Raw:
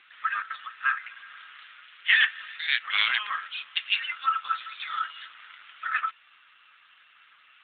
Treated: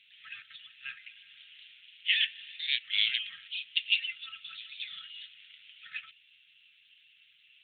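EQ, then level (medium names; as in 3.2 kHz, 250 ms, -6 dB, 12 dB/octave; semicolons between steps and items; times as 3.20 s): elliptic band-stop 170–2700 Hz, stop band 80 dB; 0.0 dB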